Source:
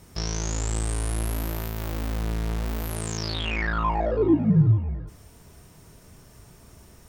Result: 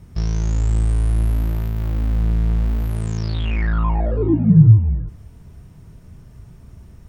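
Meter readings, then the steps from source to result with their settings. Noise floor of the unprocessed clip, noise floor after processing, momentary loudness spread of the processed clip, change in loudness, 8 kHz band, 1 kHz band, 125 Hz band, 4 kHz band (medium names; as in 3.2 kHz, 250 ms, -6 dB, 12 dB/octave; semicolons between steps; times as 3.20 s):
-52 dBFS, -44 dBFS, 12 LU, +7.5 dB, no reading, -2.5 dB, +9.5 dB, -5.5 dB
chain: tone controls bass +13 dB, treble -7 dB; trim -2.5 dB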